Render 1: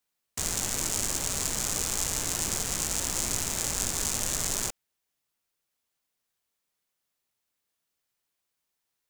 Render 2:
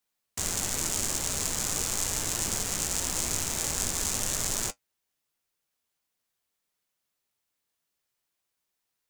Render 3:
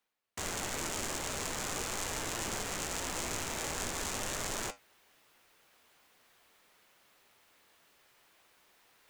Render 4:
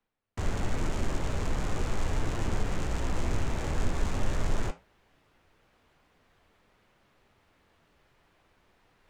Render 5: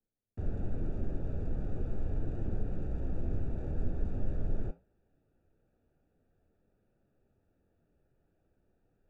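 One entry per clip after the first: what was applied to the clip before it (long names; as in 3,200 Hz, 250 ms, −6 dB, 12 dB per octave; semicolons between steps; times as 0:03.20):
flanger 0.43 Hz, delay 8.7 ms, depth 4.7 ms, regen −53%; level +4 dB
bass and treble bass −7 dB, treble −11 dB; reversed playback; upward compression, threshold −47 dBFS; reversed playback
flanger 1 Hz, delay 4.8 ms, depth 8.2 ms, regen −82%; RIAA equalisation playback; level +5.5 dB
moving average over 42 samples; level −3.5 dB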